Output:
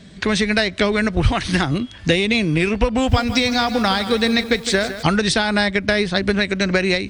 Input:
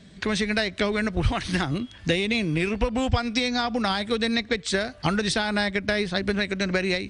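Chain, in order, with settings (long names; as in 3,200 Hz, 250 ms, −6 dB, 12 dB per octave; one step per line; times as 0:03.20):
0:02.92–0:05.03: feedback echo at a low word length 160 ms, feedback 55%, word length 7 bits, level −11.5 dB
level +6.5 dB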